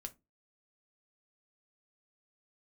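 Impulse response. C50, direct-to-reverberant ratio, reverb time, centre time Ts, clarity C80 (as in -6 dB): 21.0 dB, 5.5 dB, 0.25 s, 4 ms, 30.5 dB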